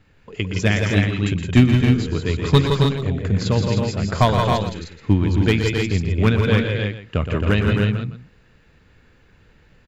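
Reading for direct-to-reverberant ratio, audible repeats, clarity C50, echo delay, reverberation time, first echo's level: no reverb audible, 5, no reverb audible, 119 ms, no reverb audible, −9.0 dB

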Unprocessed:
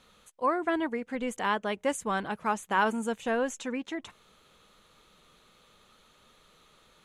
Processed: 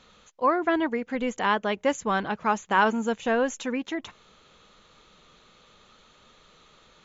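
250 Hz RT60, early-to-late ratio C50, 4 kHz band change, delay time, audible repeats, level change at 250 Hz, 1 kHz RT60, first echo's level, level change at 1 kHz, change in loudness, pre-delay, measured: no reverb audible, no reverb audible, +4.5 dB, no echo audible, no echo audible, +4.5 dB, no reverb audible, no echo audible, +4.5 dB, +4.5 dB, no reverb audible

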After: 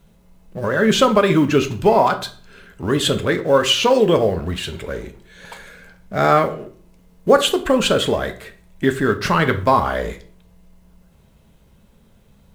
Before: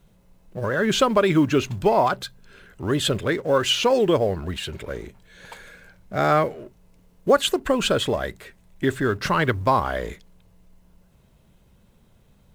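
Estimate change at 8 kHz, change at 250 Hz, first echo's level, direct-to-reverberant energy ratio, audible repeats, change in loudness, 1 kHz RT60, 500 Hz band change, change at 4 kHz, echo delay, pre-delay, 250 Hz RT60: +4.0 dB, +4.5 dB, no echo audible, 6.5 dB, no echo audible, +4.5 dB, 0.45 s, +4.5 dB, +4.5 dB, no echo audible, 3 ms, 0.55 s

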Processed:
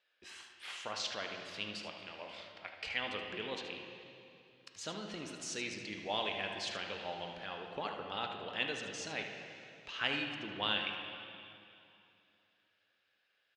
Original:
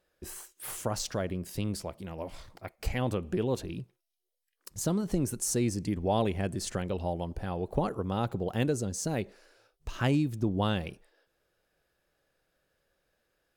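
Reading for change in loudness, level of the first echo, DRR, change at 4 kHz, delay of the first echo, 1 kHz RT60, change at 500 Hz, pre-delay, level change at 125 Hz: −7.5 dB, −9.5 dB, 2.0 dB, +4.5 dB, 76 ms, 2.6 s, −10.5 dB, 4 ms, −22.0 dB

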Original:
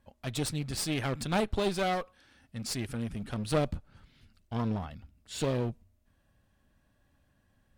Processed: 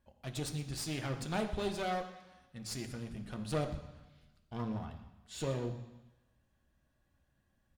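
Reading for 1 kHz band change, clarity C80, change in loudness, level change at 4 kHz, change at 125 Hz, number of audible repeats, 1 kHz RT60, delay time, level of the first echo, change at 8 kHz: −5.5 dB, 11.0 dB, −6.0 dB, −6.5 dB, −5.5 dB, 1, 1.2 s, 122 ms, −18.5 dB, −6.0 dB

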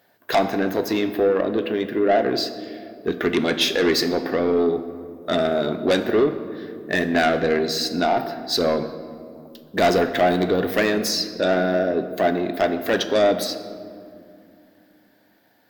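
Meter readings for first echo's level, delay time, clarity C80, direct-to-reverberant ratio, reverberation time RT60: no echo audible, no echo audible, 12.0 dB, 9.0 dB, 2.5 s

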